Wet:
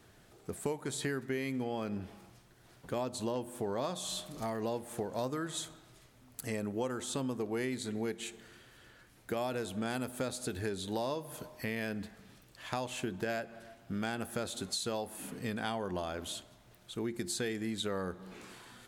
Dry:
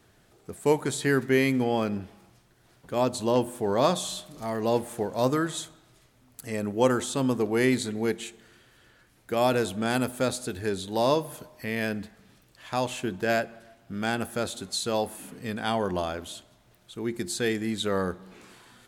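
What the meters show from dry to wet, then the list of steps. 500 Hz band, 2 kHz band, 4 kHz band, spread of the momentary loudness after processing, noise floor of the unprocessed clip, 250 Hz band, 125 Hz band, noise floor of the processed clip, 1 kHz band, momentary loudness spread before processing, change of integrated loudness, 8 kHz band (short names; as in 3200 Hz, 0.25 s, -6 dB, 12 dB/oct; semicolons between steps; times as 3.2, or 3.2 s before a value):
-10.5 dB, -9.5 dB, -7.0 dB, 14 LU, -61 dBFS, -9.0 dB, -8.5 dB, -61 dBFS, -10.5 dB, 13 LU, -9.5 dB, -5.5 dB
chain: compressor 6:1, threshold -33 dBFS, peak gain reduction 15.5 dB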